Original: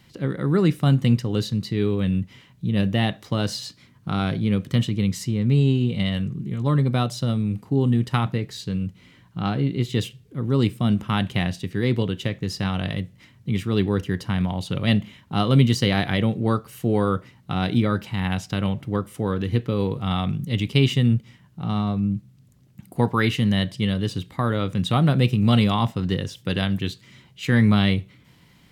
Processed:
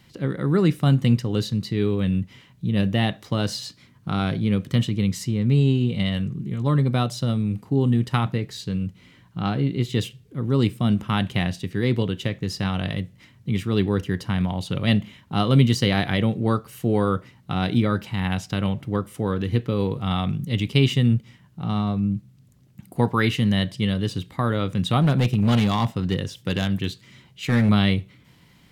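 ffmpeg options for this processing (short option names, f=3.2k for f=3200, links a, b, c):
-filter_complex "[0:a]asettb=1/sr,asplit=3[a][b][c];[a]atrim=end=25.004[d];[b]atrim=start=25:end=27.69,asetpts=PTS-STARTPTS,afade=t=in:d=0.004:c=qsin,afade=t=out:st=2.686:d=0.004:c=qsin,asoftclip=type=hard:threshold=-14dB[e];[c]atrim=start=27.686[f];[d][e]acrossfade=d=0.004:c1=hsin:c2=qsin[g];[g][f]acrossfade=d=0.004:c1=qsin:c2=hsin"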